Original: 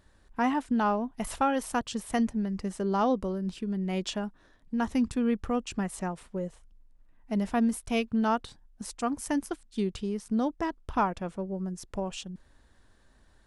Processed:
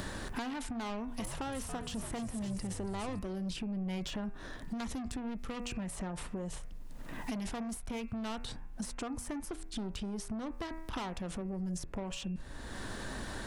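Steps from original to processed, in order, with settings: bass shelf 160 Hz +6 dB; saturation -29.5 dBFS, distortion -8 dB; peak limiter -40 dBFS, peak gain reduction 10.5 dB; compression, threshold -44 dBFS, peak gain reduction 3.5 dB; de-hum 80.42 Hz, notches 34; 0.90–3.19 s: frequency-shifting echo 280 ms, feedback 44%, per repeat -100 Hz, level -10 dB; three bands compressed up and down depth 100%; trim +7.5 dB

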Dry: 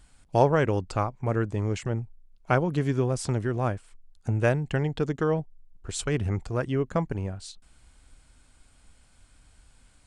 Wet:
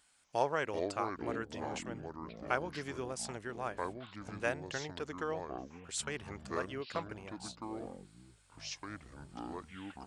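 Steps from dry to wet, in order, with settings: high-pass 1.1 kHz 6 dB/octave; ever faster or slower copies 243 ms, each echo -6 st, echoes 3, each echo -6 dB; trim -4.5 dB

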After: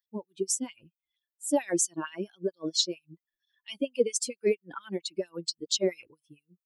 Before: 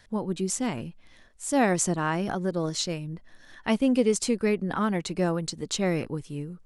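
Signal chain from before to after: expander on every frequency bin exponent 2; peaking EQ 1.3 kHz -14.5 dB 2.4 oct; in parallel at +1 dB: peak limiter -24 dBFS, peak gain reduction 10.5 dB; on the sum: LFO high-pass sine 4.4 Hz 340–4100 Hz

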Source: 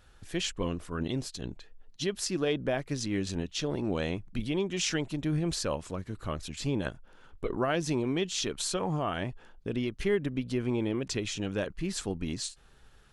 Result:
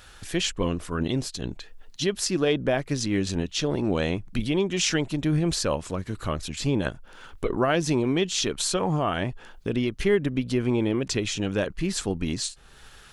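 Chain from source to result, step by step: tape noise reduction on one side only encoder only; trim +6 dB

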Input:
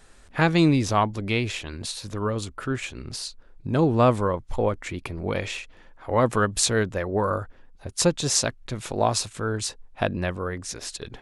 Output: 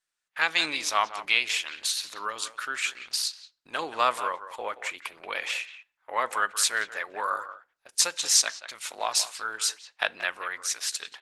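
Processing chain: gate -40 dBFS, range -25 dB; high-pass 1.5 kHz 12 dB/octave; 4.27–6.75 s: peaking EQ 5.5 kHz -5.5 dB 1.9 oct; level rider gain up to 7 dB; speakerphone echo 180 ms, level -12 dB; FDN reverb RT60 0.41 s, low-frequency decay 1.4×, high-frequency decay 0.8×, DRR 17.5 dB; Opus 16 kbps 48 kHz

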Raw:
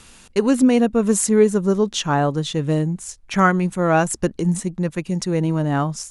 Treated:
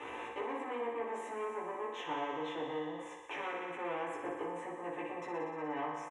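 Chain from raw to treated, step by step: compression 2.5:1, threshold -39 dBFS, peak gain reduction 19 dB; saturation -36 dBFS, distortion -8 dB; ladder band-pass 650 Hz, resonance 60%; static phaser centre 940 Hz, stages 8; doubling 17 ms -2 dB; on a send: thinning echo 60 ms, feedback 84%, high-pass 580 Hz, level -8 dB; on the sum: FDN reverb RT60 0.35 s, low-frequency decay 1.45×, high-frequency decay 0.35×, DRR -5.5 dB; spectrum-flattening compressor 2:1; trim +6 dB

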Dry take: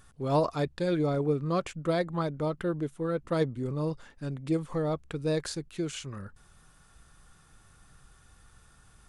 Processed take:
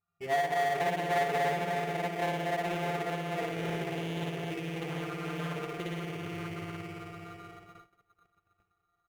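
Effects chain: pitch-class resonator F, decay 0.17 s; dynamic bell 370 Hz, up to +6 dB, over -49 dBFS, Q 0.92; comb 7.2 ms, depth 78%; spring tank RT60 3.5 s, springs 54/60 ms, chirp 30 ms, DRR -7.5 dB; compression 6:1, threshold -37 dBFS, peak gain reduction 16.5 dB; echo that smears into a reverb 499 ms, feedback 58%, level -6.5 dB; sample-rate reducer 2.6 kHz, jitter 0%; gate -55 dBFS, range -24 dB; high-order bell 1.1 kHz +11 dB 3 oct; loudspeaker Doppler distortion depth 0.41 ms

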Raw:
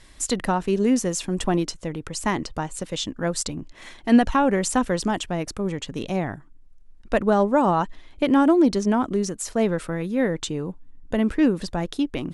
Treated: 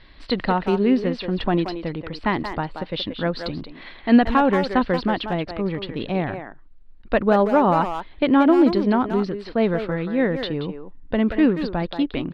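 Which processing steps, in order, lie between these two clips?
elliptic low-pass 4.4 kHz, stop band 40 dB; speakerphone echo 180 ms, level -7 dB; trim +2.5 dB

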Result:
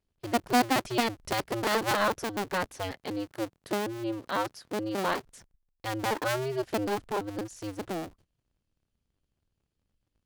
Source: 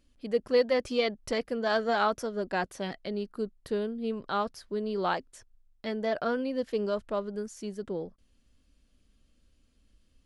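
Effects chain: cycle switcher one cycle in 2, inverted; 2.94–5.08 s: high-pass 120 Hz 12 dB/octave; gate -55 dBFS, range -15 dB

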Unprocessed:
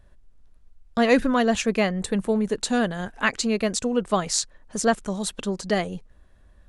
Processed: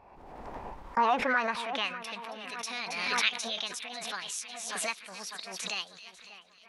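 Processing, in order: band-pass sweep 550 Hz -> 2.5 kHz, 0.69–2.32 s; on a send: two-band feedback delay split 2 kHz, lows 593 ms, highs 273 ms, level -13.5 dB; on the sum: formant shift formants +6 st; swell ahead of each attack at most 35 dB/s

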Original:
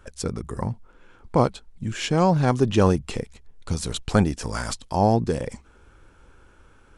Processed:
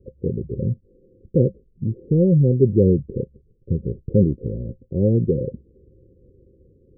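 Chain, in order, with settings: high-pass 75 Hz 6 dB/octave; in parallel at -7 dB: overload inside the chain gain 22.5 dB; on the sum: rippled Chebyshev low-pass 540 Hz, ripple 6 dB; trim +5.5 dB

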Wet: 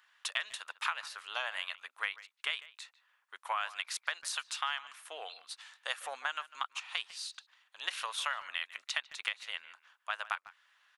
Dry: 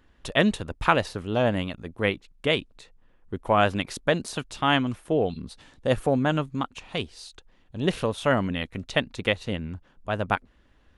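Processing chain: high-pass 1.1 kHz 24 dB/octave; compression 10:1, threshold -33 dBFS, peak gain reduction 17 dB; speakerphone echo 150 ms, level -17 dB; trim +2 dB

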